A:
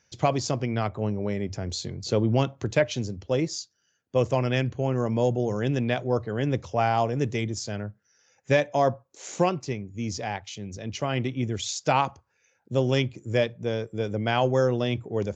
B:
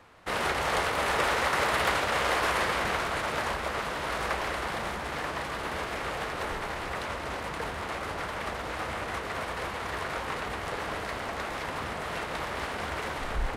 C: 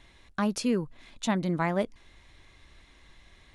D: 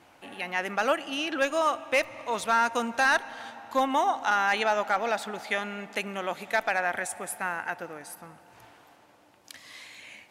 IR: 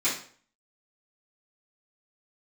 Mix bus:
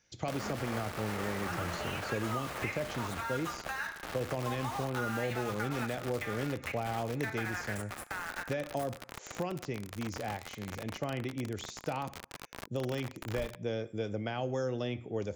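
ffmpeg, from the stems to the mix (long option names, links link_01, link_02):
-filter_complex "[0:a]alimiter=limit=-15dB:level=0:latency=1,volume=-4.5dB,asplit=2[link_01][link_02];[link_02]volume=-24dB[link_03];[1:a]volume=-4.5dB[link_04];[2:a]asplit=2[link_05][link_06];[link_06]adelay=9.5,afreqshift=-0.57[link_07];[link_05][link_07]amix=inputs=2:normalize=1,volume=-10dB,asplit=2[link_08][link_09];[link_09]volume=-16.5dB[link_10];[3:a]highpass=frequency=930:width=0.5412,highpass=frequency=930:width=1.3066,dynaudnorm=framelen=580:gausssize=3:maxgain=12dB,adelay=700,volume=-10dB,asplit=2[link_11][link_12];[link_12]volume=-21dB[link_13];[link_04][link_08][link_11]amix=inputs=3:normalize=0,acrusher=bits=4:mix=0:aa=0.000001,acompressor=threshold=-31dB:ratio=6,volume=0dB[link_14];[4:a]atrim=start_sample=2205[link_15];[link_03][link_10][link_13]amix=inputs=3:normalize=0[link_16];[link_16][link_15]afir=irnorm=-1:irlink=0[link_17];[link_01][link_14][link_17]amix=inputs=3:normalize=0,bandreject=frequency=1000:width=16,acrossover=split=420|2100[link_18][link_19][link_20];[link_18]acompressor=threshold=-35dB:ratio=4[link_21];[link_19]acompressor=threshold=-36dB:ratio=4[link_22];[link_20]acompressor=threshold=-47dB:ratio=4[link_23];[link_21][link_22][link_23]amix=inputs=3:normalize=0"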